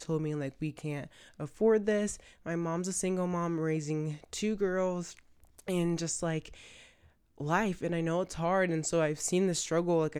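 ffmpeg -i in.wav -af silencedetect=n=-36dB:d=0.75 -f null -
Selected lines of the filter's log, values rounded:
silence_start: 6.46
silence_end: 7.40 | silence_duration: 0.95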